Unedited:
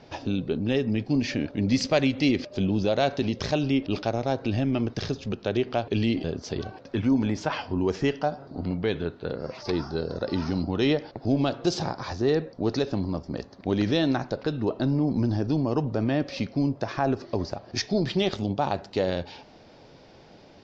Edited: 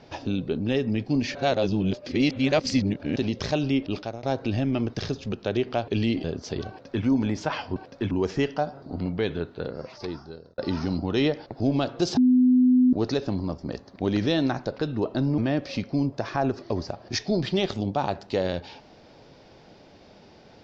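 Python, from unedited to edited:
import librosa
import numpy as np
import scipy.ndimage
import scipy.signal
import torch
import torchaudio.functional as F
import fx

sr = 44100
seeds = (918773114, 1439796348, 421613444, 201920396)

y = fx.edit(x, sr, fx.reverse_span(start_s=1.35, length_s=1.81),
    fx.fade_out_to(start_s=3.83, length_s=0.4, floor_db=-14.0),
    fx.duplicate(start_s=6.69, length_s=0.35, to_s=7.76),
    fx.fade_out_span(start_s=9.21, length_s=1.02),
    fx.bleep(start_s=11.82, length_s=0.76, hz=252.0, db=-14.5),
    fx.cut(start_s=15.03, length_s=0.98), tone=tone)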